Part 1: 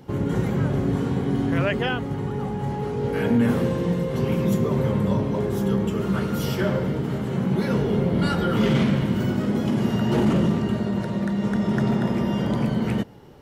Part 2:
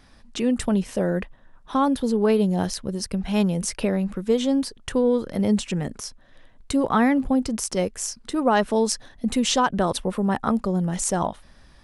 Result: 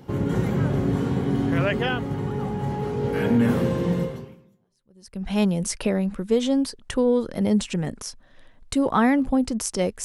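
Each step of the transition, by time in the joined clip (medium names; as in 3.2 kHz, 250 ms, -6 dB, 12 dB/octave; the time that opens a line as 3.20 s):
part 1
4.65 s: go over to part 2 from 2.63 s, crossfade 1.22 s exponential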